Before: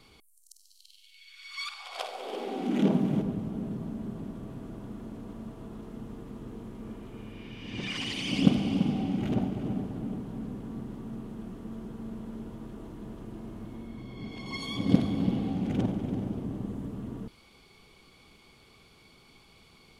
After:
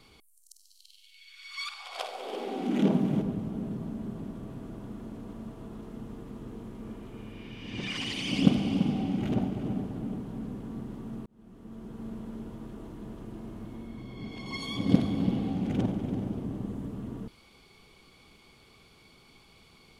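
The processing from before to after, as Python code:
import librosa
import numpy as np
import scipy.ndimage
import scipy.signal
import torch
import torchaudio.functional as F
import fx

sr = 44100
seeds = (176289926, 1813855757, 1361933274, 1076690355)

y = fx.edit(x, sr, fx.fade_in_span(start_s=11.26, length_s=0.79), tone=tone)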